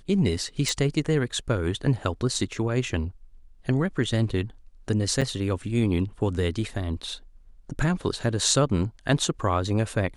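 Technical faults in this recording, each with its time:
0.69 pop
5.21–5.22 gap 6.7 ms

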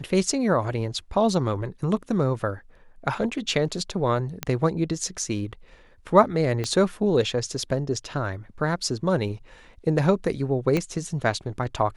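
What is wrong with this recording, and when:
4.43 pop -10 dBFS
6.64 pop -14 dBFS
10.77 pop -11 dBFS

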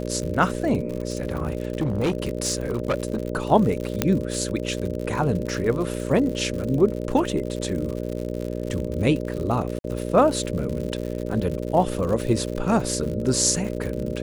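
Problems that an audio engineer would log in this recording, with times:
buzz 60 Hz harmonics 10 -29 dBFS
crackle 100/s -29 dBFS
0.97–3.27 clipped -18.5 dBFS
4.02 pop -4 dBFS
9.79–9.84 gap 52 ms

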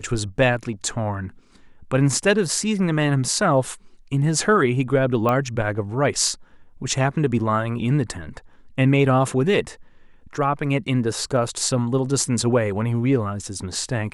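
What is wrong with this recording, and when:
5.29 pop -11 dBFS

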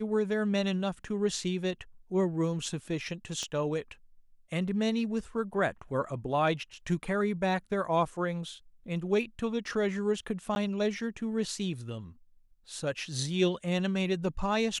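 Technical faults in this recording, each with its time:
3.43 pop -24 dBFS
10.55–10.56 gap 11 ms

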